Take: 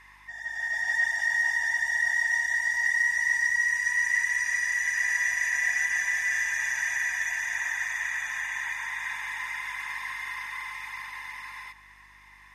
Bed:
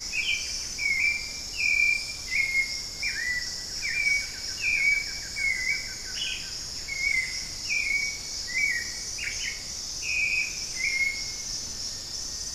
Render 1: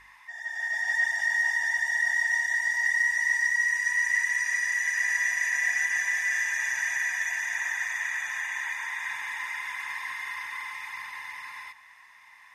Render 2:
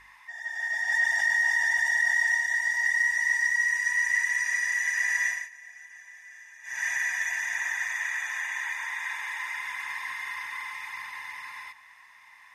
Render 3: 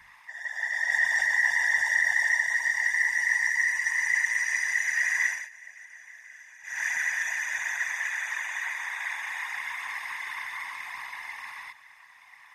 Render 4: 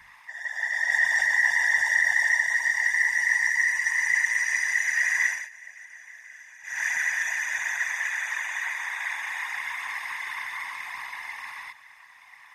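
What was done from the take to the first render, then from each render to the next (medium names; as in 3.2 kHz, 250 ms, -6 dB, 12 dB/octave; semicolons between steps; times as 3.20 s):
de-hum 50 Hz, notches 8
0.92–2.35 s: level flattener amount 50%; 5.26–6.86 s: dip -21 dB, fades 0.23 s; 7.94–9.55 s: high-pass 270 Hz 24 dB/octave
whisper effect
trim +2 dB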